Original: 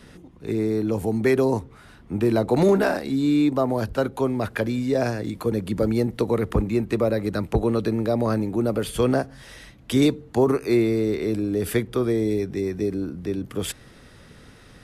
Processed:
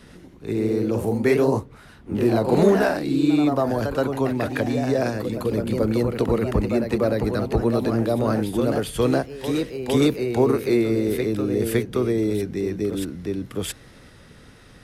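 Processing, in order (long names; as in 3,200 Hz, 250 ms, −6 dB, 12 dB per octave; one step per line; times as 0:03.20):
delay with pitch and tempo change per echo 98 ms, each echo +1 semitone, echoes 3, each echo −6 dB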